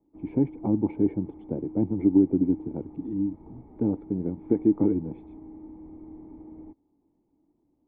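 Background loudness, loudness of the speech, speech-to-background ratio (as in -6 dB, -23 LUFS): -45.0 LUFS, -26.5 LUFS, 18.5 dB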